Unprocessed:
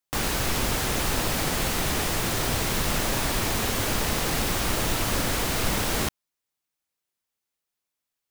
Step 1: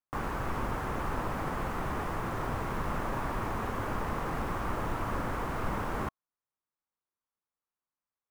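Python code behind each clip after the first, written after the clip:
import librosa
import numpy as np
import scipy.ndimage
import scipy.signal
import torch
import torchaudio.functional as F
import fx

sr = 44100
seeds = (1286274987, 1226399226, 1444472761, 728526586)

y = fx.curve_eq(x, sr, hz=(670.0, 1100.0, 4000.0), db=(0, 6, -18))
y = F.gain(torch.from_numpy(y), -6.5).numpy()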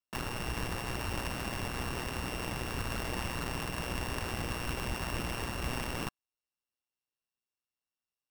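y = np.r_[np.sort(x[:len(x) // 16 * 16].reshape(-1, 16), axis=1).ravel(), x[len(x) // 16 * 16:]]
y = y * np.sin(2.0 * np.pi * 61.0 * np.arange(len(y)) / sr)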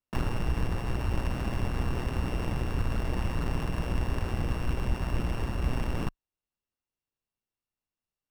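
y = fx.tilt_eq(x, sr, slope=-2.5)
y = fx.rider(y, sr, range_db=10, speed_s=0.5)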